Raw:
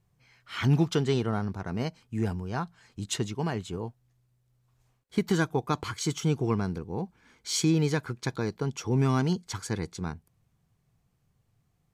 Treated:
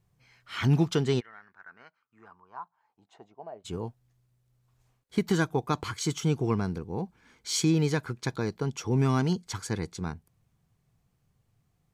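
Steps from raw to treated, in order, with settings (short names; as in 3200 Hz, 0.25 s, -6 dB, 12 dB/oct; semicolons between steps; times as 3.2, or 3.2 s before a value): 1.19–3.64 band-pass 2000 Hz -> 600 Hz, Q 6.4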